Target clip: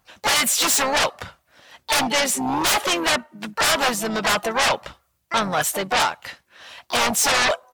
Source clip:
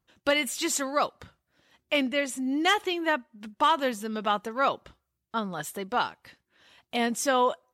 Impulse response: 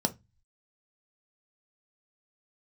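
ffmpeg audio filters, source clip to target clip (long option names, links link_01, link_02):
-filter_complex "[0:a]asplit=4[link_01][link_02][link_03][link_04];[link_02]asetrate=33038,aresample=44100,atempo=1.33484,volume=-15dB[link_05];[link_03]asetrate=37084,aresample=44100,atempo=1.18921,volume=-16dB[link_06];[link_04]asetrate=66075,aresample=44100,atempo=0.66742,volume=-12dB[link_07];[link_01][link_05][link_06][link_07]amix=inputs=4:normalize=0,aeval=exprs='0.299*sin(PI/2*6.31*val(0)/0.299)':channel_layout=same,lowshelf=frequency=480:width_type=q:width=1.5:gain=-6.5,volume=-4.5dB"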